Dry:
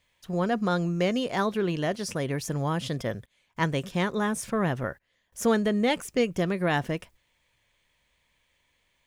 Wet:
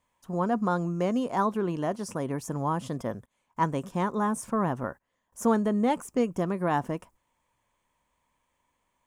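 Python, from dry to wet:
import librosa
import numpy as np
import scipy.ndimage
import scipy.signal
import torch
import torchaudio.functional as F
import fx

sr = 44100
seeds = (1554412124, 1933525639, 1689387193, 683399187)

y = fx.graphic_eq(x, sr, hz=(250, 1000, 2000, 4000, 8000), db=(7, 12, -5, -8, 5))
y = y * librosa.db_to_amplitude(-6.0)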